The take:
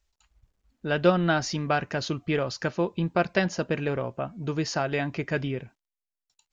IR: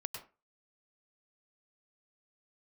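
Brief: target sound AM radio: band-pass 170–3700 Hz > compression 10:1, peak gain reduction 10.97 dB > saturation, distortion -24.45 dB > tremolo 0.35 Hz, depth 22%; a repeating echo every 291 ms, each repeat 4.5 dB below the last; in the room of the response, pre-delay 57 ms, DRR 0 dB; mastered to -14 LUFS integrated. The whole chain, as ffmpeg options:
-filter_complex "[0:a]aecho=1:1:291|582|873|1164|1455|1746|2037|2328|2619:0.596|0.357|0.214|0.129|0.0772|0.0463|0.0278|0.0167|0.01,asplit=2[s0][s1];[1:a]atrim=start_sample=2205,adelay=57[s2];[s1][s2]afir=irnorm=-1:irlink=0,volume=1.12[s3];[s0][s3]amix=inputs=2:normalize=0,highpass=170,lowpass=3700,acompressor=threshold=0.0631:ratio=10,asoftclip=threshold=0.141,tremolo=f=0.35:d=0.22,volume=6.68"

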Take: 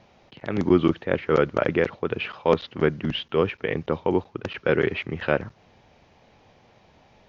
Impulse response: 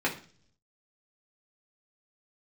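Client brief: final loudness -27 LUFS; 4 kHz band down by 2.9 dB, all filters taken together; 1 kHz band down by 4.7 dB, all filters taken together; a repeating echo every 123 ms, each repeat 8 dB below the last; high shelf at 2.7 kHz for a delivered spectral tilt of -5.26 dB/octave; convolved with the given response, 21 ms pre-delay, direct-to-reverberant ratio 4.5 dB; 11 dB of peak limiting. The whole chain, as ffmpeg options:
-filter_complex "[0:a]equalizer=f=1000:t=o:g=-6.5,highshelf=f=2700:g=3.5,equalizer=f=4000:t=o:g=-7,alimiter=limit=0.133:level=0:latency=1,aecho=1:1:123|246|369|492|615:0.398|0.159|0.0637|0.0255|0.0102,asplit=2[s0][s1];[1:a]atrim=start_sample=2205,adelay=21[s2];[s1][s2]afir=irnorm=-1:irlink=0,volume=0.178[s3];[s0][s3]amix=inputs=2:normalize=0,volume=1.26"

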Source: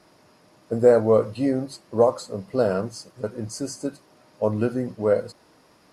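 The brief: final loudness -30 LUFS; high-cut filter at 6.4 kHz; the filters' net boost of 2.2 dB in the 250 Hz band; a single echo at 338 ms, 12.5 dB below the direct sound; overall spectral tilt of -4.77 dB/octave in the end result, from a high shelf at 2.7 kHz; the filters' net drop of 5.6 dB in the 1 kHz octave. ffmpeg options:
-af "lowpass=6400,equalizer=f=250:t=o:g=3,equalizer=f=1000:t=o:g=-7.5,highshelf=f=2700:g=-6,aecho=1:1:338:0.237,volume=0.501"

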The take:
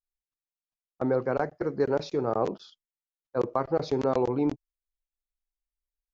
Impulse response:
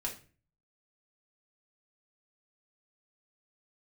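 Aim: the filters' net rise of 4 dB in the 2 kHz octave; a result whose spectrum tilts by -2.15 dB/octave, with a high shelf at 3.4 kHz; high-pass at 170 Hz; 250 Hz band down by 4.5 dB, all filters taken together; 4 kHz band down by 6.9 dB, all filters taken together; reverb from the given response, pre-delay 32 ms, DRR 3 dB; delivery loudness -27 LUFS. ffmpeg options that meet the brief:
-filter_complex "[0:a]highpass=170,equalizer=f=250:t=o:g=-5,equalizer=f=2000:t=o:g=9,highshelf=f=3400:g=-8.5,equalizer=f=4000:t=o:g=-4.5,asplit=2[s0][s1];[1:a]atrim=start_sample=2205,adelay=32[s2];[s1][s2]afir=irnorm=-1:irlink=0,volume=0.596[s3];[s0][s3]amix=inputs=2:normalize=0,volume=1.19"

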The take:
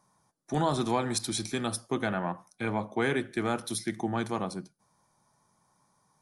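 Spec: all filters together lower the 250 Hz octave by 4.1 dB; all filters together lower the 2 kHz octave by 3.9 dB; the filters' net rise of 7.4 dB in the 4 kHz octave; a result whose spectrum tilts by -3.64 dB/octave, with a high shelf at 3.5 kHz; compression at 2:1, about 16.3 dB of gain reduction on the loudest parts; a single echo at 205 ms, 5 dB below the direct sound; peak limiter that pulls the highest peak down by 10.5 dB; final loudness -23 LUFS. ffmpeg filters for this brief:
-af "equalizer=f=250:t=o:g=-5.5,equalizer=f=2000:t=o:g=-8.5,highshelf=f=3500:g=6.5,equalizer=f=4000:t=o:g=6.5,acompressor=threshold=0.00316:ratio=2,alimiter=level_in=3.76:limit=0.0631:level=0:latency=1,volume=0.266,aecho=1:1:205:0.562,volume=14.1"

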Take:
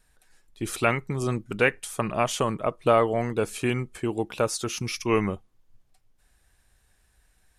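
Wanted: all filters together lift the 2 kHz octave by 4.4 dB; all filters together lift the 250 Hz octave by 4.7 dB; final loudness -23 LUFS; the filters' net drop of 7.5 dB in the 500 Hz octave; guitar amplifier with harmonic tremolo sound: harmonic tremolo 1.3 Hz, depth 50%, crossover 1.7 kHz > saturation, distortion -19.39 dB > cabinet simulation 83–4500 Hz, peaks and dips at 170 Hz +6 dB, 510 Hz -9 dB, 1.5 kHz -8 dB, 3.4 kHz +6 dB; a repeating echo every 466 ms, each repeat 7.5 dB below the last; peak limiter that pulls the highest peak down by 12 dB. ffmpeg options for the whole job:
-filter_complex "[0:a]equalizer=f=250:t=o:g=7.5,equalizer=f=500:t=o:g=-8.5,equalizer=f=2000:t=o:g=7.5,alimiter=limit=0.168:level=0:latency=1,aecho=1:1:466|932|1398|1864|2330:0.422|0.177|0.0744|0.0312|0.0131,acrossover=split=1700[s0][s1];[s0]aeval=exprs='val(0)*(1-0.5/2+0.5/2*cos(2*PI*1.3*n/s))':c=same[s2];[s1]aeval=exprs='val(0)*(1-0.5/2-0.5/2*cos(2*PI*1.3*n/s))':c=same[s3];[s2][s3]amix=inputs=2:normalize=0,asoftclip=threshold=0.112,highpass=83,equalizer=f=170:t=q:w=4:g=6,equalizer=f=510:t=q:w=4:g=-9,equalizer=f=1500:t=q:w=4:g=-8,equalizer=f=3400:t=q:w=4:g=6,lowpass=f=4500:w=0.5412,lowpass=f=4500:w=1.3066,volume=2.82"

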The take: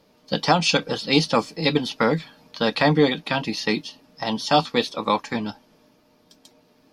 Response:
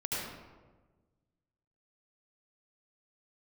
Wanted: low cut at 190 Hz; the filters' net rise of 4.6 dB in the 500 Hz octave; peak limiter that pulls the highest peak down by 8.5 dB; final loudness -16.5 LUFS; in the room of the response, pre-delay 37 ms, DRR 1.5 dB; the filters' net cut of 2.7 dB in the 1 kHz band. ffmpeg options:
-filter_complex "[0:a]highpass=190,equalizer=f=500:t=o:g=7,equalizer=f=1000:t=o:g=-7,alimiter=limit=0.251:level=0:latency=1,asplit=2[s0][s1];[1:a]atrim=start_sample=2205,adelay=37[s2];[s1][s2]afir=irnorm=-1:irlink=0,volume=0.447[s3];[s0][s3]amix=inputs=2:normalize=0,volume=1.88"

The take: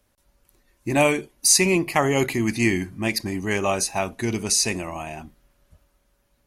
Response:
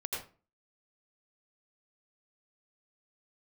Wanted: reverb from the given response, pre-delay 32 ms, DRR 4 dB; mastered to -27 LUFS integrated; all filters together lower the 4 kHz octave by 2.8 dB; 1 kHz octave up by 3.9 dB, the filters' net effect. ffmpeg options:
-filter_complex "[0:a]equalizer=f=1000:t=o:g=5.5,equalizer=f=4000:t=o:g=-4,asplit=2[s0][s1];[1:a]atrim=start_sample=2205,adelay=32[s2];[s1][s2]afir=irnorm=-1:irlink=0,volume=0.473[s3];[s0][s3]amix=inputs=2:normalize=0,volume=0.447"

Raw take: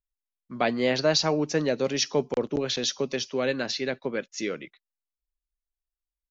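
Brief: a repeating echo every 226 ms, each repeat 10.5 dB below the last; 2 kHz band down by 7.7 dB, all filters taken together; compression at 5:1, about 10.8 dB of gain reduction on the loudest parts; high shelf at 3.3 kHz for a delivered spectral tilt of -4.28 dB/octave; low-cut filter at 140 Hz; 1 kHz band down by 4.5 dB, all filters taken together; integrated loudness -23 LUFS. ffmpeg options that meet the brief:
-af "highpass=140,equalizer=f=1000:t=o:g=-4.5,equalizer=f=2000:t=o:g=-5.5,highshelf=f=3300:g=-9,acompressor=threshold=0.0224:ratio=5,aecho=1:1:226|452|678:0.299|0.0896|0.0269,volume=5.01"

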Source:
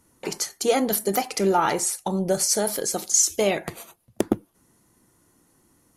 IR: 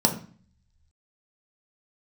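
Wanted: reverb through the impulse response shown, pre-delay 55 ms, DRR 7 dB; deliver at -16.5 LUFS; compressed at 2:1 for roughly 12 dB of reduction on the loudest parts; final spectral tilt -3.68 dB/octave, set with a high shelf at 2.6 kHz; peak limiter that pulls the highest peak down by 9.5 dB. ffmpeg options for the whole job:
-filter_complex "[0:a]highshelf=f=2600:g=5,acompressor=threshold=0.0224:ratio=2,alimiter=limit=0.0891:level=0:latency=1,asplit=2[s0][s1];[1:a]atrim=start_sample=2205,adelay=55[s2];[s1][s2]afir=irnorm=-1:irlink=0,volume=0.1[s3];[s0][s3]amix=inputs=2:normalize=0,volume=5.01"

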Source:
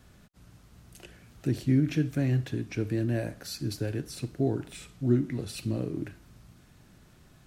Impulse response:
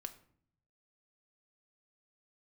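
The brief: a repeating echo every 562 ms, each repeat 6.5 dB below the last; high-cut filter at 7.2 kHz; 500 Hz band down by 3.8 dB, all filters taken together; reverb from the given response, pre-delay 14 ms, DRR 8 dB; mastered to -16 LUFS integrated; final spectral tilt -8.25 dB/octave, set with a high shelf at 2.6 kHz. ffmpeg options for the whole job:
-filter_complex "[0:a]lowpass=7200,equalizer=f=500:t=o:g=-5.5,highshelf=f=2600:g=-6,aecho=1:1:562|1124|1686|2248|2810|3372:0.473|0.222|0.105|0.0491|0.0231|0.0109,asplit=2[s0][s1];[1:a]atrim=start_sample=2205,adelay=14[s2];[s1][s2]afir=irnorm=-1:irlink=0,volume=0.596[s3];[s0][s3]amix=inputs=2:normalize=0,volume=5.01"

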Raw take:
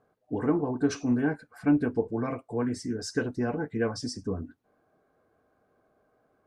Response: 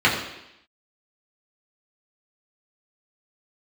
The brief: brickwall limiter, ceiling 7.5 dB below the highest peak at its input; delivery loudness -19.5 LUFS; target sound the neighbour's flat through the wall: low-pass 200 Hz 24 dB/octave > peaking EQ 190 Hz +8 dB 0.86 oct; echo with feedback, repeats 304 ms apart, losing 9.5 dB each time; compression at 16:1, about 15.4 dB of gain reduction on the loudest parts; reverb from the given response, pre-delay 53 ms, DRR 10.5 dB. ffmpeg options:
-filter_complex "[0:a]acompressor=threshold=0.02:ratio=16,alimiter=level_in=2.51:limit=0.0631:level=0:latency=1,volume=0.398,aecho=1:1:304|608|912|1216:0.335|0.111|0.0365|0.012,asplit=2[s0][s1];[1:a]atrim=start_sample=2205,adelay=53[s2];[s1][s2]afir=irnorm=-1:irlink=0,volume=0.0266[s3];[s0][s3]amix=inputs=2:normalize=0,lowpass=f=200:w=0.5412,lowpass=f=200:w=1.3066,equalizer=f=190:t=o:w=0.86:g=8,volume=16.8"

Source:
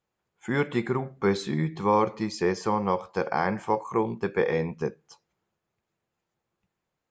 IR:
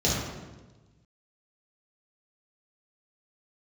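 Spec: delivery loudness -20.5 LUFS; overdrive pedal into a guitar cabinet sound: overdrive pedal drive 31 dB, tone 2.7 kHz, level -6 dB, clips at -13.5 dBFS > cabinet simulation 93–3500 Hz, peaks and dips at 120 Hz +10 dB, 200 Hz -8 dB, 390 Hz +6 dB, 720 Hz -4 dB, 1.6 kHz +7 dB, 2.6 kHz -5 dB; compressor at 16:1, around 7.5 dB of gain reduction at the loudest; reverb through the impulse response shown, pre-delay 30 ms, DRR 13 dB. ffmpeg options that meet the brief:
-filter_complex "[0:a]acompressor=threshold=0.0562:ratio=16,asplit=2[s0][s1];[1:a]atrim=start_sample=2205,adelay=30[s2];[s1][s2]afir=irnorm=-1:irlink=0,volume=0.0473[s3];[s0][s3]amix=inputs=2:normalize=0,asplit=2[s4][s5];[s5]highpass=f=720:p=1,volume=35.5,asoftclip=type=tanh:threshold=0.211[s6];[s4][s6]amix=inputs=2:normalize=0,lowpass=f=2700:p=1,volume=0.501,highpass=93,equalizer=f=120:t=q:w=4:g=10,equalizer=f=200:t=q:w=4:g=-8,equalizer=f=390:t=q:w=4:g=6,equalizer=f=720:t=q:w=4:g=-4,equalizer=f=1600:t=q:w=4:g=7,equalizer=f=2600:t=q:w=4:g=-5,lowpass=f=3500:w=0.5412,lowpass=f=3500:w=1.3066"

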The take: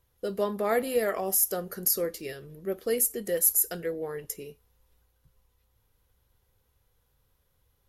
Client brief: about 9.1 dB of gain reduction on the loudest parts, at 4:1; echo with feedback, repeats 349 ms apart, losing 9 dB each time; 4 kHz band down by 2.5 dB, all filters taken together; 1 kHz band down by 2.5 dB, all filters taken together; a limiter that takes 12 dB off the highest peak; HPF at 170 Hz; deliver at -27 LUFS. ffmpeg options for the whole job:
-af "highpass=170,equalizer=f=1000:t=o:g=-3.5,equalizer=f=4000:t=o:g=-3.5,acompressor=threshold=0.0316:ratio=4,alimiter=level_in=1.5:limit=0.0631:level=0:latency=1,volume=0.668,aecho=1:1:349|698|1047|1396:0.355|0.124|0.0435|0.0152,volume=3.16"

